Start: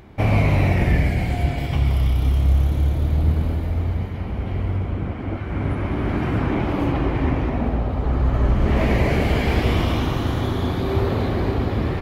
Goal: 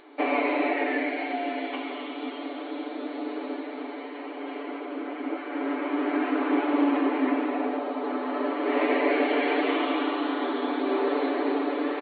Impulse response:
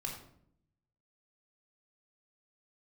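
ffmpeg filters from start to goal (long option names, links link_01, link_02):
-filter_complex "[0:a]afftfilt=real='re*between(b*sr/4096,250,4500)':imag='im*between(b*sr/4096,250,4500)':win_size=4096:overlap=0.75,acrossover=split=3400[link_01][link_02];[link_02]acompressor=threshold=-56dB:ratio=4:attack=1:release=60[link_03];[link_01][link_03]amix=inputs=2:normalize=0,aecho=1:1:6.9:0.8,volume=-2.5dB"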